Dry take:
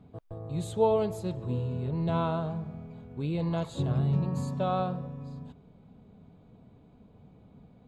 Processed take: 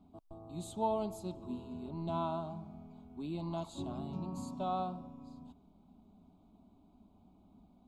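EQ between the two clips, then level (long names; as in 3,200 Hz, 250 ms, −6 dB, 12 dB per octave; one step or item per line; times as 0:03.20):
phaser with its sweep stopped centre 480 Hz, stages 6
−3.5 dB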